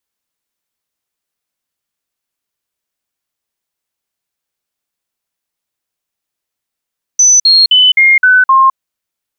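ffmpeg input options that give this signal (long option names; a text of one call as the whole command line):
ffmpeg -f lavfi -i "aevalsrc='0.668*clip(min(mod(t,0.26),0.21-mod(t,0.26))/0.005,0,1)*sin(2*PI*6020*pow(2,-floor(t/0.26)/2)*mod(t,0.26))':duration=1.56:sample_rate=44100" out.wav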